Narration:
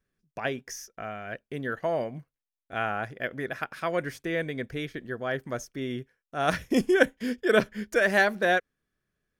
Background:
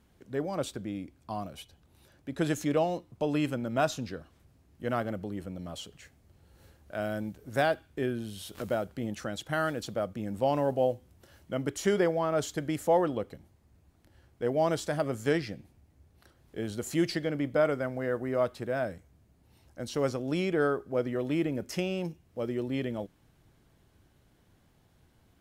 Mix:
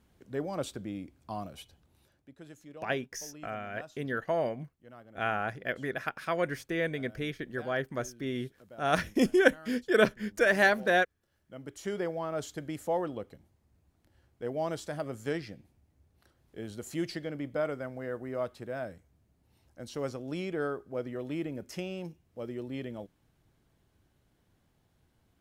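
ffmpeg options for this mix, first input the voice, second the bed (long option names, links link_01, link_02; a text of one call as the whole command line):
ffmpeg -i stem1.wav -i stem2.wav -filter_complex "[0:a]adelay=2450,volume=-1.5dB[link_01];[1:a]volume=13dB,afade=type=out:start_time=1.73:duration=0.63:silence=0.112202,afade=type=in:start_time=11.3:duration=0.89:silence=0.177828[link_02];[link_01][link_02]amix=inputs=2:normalize=0" out.wav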